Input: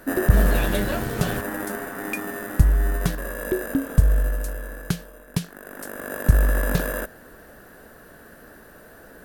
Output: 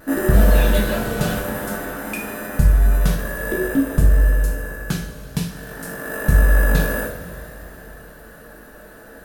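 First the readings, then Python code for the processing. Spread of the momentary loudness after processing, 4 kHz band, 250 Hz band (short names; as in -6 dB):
16 LU, +4.0 dB, +4.0 dB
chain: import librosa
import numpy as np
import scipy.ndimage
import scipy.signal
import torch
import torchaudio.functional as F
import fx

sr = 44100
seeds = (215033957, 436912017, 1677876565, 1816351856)

y = fx.rev_double_slope(x, sr, seeds[0], early_s=0.47, late_s=4.0, knee_db=-17, drr_db=-3.0)
y = fx.vibrato(y, sr, rate_hz=0.55, depth_cents=15.0)
y = y * 10.0 ** (-1.0 / 20.0)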